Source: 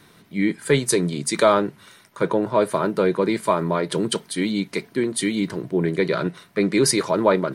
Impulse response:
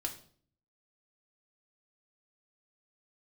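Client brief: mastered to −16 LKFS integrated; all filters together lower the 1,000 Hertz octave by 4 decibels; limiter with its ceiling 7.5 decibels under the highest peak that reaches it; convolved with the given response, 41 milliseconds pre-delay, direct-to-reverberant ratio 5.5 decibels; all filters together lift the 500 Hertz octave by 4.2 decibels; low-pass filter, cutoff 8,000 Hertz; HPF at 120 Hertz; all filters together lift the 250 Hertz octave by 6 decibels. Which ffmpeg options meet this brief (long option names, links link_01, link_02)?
-filter_complex "[0:a]highpass=120,lowpass=8000,equalizer=frequency=250:width_type=o:gain=7.5,equalizer=frequency=500:width_type=o:gain=4.5,equalizer=frequency=1000:width_type=o:gain=-6.5,alimiter=limit=-9dB:level=0:latency=1,asplit=2[link_01][link_02];[1:a]atrim=start_sample=2205,adelay=41[link_03];[link_02][link_03]afir=irnorm=-1:irlink=0,volume=-6dB[link_04];[link_01][link_04]amix=inputs=2:normalize=0,volume=2.5dB"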